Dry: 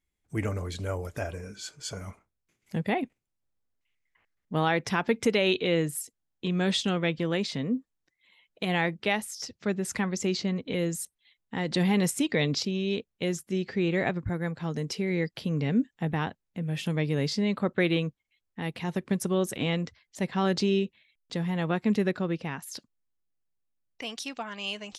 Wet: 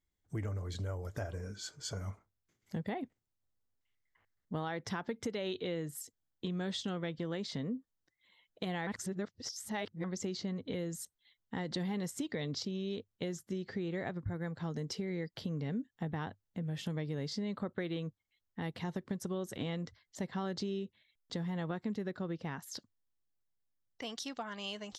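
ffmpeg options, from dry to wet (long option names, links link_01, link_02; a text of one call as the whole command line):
ffmpeg -i in.wav -filter_complex "[0:a]asplit=3[link_01][link_02][link_03];[link_01]atrim=end=8.872[link_04];[link_02]atrim=start=8.868:end=10.042,asetpts=PTS-STARTPTS,areverse[link_05];[link_03]atrim=start=10.038[link_06];[link_04][link_05]acrossfade=duration=0.004:curve1=hsin:curve2=hsin[link_07];[link_07][link_06]acrossfade=duration=0.004:curve1=hsin:curve2=hsin,equalizer=frequency=100:width_type=o:width=0.33:gain=7,equalizer=frequency=2500:width_type=o:width=0.33:gain=-10,equalizer=frequency=10000:width_type=o:width=0.33:gain=-11,acompressor=threshold=-32dB:ratio=5,volume=-3dB" out.wav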